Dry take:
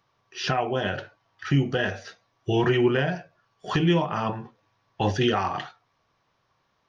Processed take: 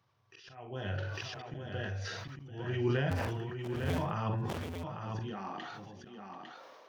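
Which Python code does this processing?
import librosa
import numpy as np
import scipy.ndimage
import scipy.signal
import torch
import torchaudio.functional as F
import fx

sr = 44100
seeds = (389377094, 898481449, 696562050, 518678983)

y = fx.cycle_switch(x, sr, every=2, mode='inverted', at=(3.09, 3.97), fade=0.02)
y = fx.filter_sweep_highpass(y, sr, from_hz=100.0, to_hz=520.0, start_s=4.71, end_s=6.34, q=4.0)
y = fx.auto_swell(y, sr, attack_ms=753.0)
y = fx.echo_multitap(y, sr, ms=(41, 43, 47, 61, 738, 853), db=(-13.0, -19.0, -19.5, -19.5, -18.0, -6.0))
y = fx.sustainer(y, sr, db_per_s=22.0)
y = y * 10.0 ** (-7.5 / 20.0)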